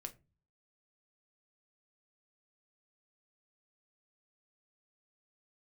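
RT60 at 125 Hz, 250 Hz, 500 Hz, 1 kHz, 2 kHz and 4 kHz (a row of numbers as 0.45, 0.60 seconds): 0.65, 0.55, 0.30, 0.25, 0.25, 0.15 seconds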